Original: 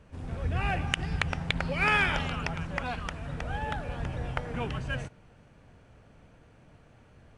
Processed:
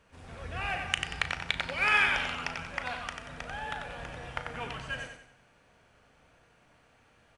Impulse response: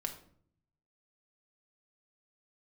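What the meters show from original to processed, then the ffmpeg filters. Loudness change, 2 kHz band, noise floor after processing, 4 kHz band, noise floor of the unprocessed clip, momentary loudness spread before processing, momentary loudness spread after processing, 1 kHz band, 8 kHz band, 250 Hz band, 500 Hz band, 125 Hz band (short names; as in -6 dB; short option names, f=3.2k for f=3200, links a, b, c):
-0.5 dB, +1.0 dB, -64 dBFS, +1.5 dB, -58 dBFS, 12 LU, 16 LU, -1.5 dB, +1.5 dB, -10.0 dB, -5.0 dB, -12.0 dB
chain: -filter_complex "[0:a]lowshelf=f=450:g=-12,asplit=2[a][b];[b]adelay=36,volume=-12.5dB[c];[a][c]amix=inputs=2:normalize=0,aecho=1:1:92|184|276|368|460:0.501|0.2|0.0802|0.0321|0.0128,asplit=2[d][e];[1:a]atrim=start_sample=2205,lowshelf=f=490:g=-10.5[f];[e][f]afir=irnorm=-1:irlink=0,volume=-5.5dB[g];[d][g]amix=inputs=2:normalize=0,volume=-3dB"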